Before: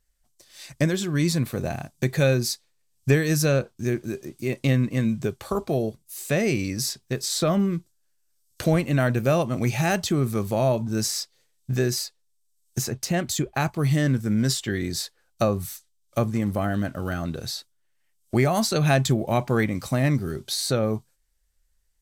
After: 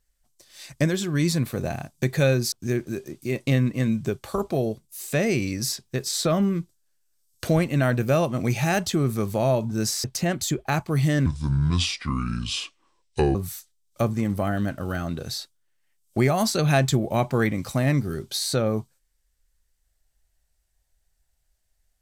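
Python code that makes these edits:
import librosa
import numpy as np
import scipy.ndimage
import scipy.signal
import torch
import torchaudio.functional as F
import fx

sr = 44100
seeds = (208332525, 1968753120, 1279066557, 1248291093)

y = fx.edit(x, sr, fx.cut(start_s=2.52, length_s=1.17),
    fx.cut(start_s=11.21, length_s=1.71),
    fx.speed_span(start_s=14.14, length_s=1.38, speed=0.66), tone=tone)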